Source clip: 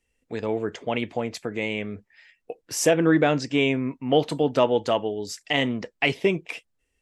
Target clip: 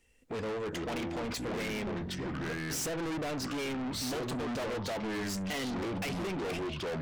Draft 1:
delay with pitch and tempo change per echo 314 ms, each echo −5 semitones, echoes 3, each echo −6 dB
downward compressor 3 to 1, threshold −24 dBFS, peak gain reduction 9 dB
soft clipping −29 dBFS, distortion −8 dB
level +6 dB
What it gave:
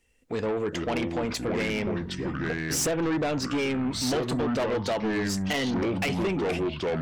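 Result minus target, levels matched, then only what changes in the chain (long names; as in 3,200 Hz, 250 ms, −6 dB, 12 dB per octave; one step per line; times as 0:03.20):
soft clipping: distortion −5 dB
change: soft clipping −39.5 dBFS, distortion −3 dB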